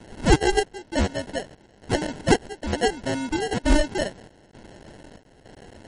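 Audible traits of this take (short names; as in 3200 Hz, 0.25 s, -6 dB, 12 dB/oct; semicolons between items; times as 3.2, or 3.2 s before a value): a quantiser's noise floor 8-bit, dither triangular; chopped level 1.1 Hz, depth 65%, duty 70%; aliases and images of a low sample rate 1200 Hz, jitter 0%; MP3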